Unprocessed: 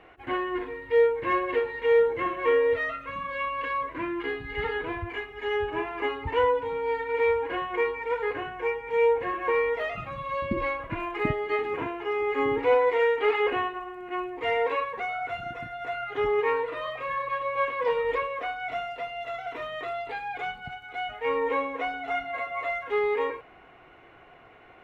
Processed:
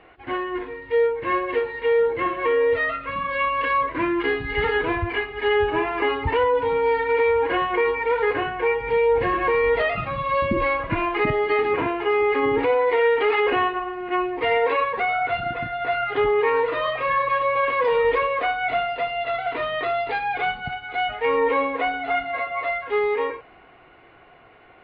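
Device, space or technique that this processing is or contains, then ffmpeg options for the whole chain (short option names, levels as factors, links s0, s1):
low-bitrate web radio: -filter_complex "[0:a]asettb=1/sr,asplit=3[s0][s1][s2];[s0]atrim=end=8.804[s3];[s1]atrim=start=8.8:end=9.82,asetpts=PTS-STARTPTS,afade=t=in:d=0.004:c=qsin,afade=t=out:st=1.016:d=0.004:c=qsin,bass=f=250:g=9,treble=f=4000:g=7[s4];[s2]atrim=start=9.816[s5];[s3][s4]acrossfade=d=0.004:c1=hsin:c2=qsin[s6];[s6][s5]acrossfade=d=0.004:c1=qsin:c2=hsin,dynaudnorm=f=180:g=31:m=2.24,alimiter=limit=0.178:level=0:latency=1:release=42,volume=1.33" -ar 11025 -c:a libmp3lame -b:a 32k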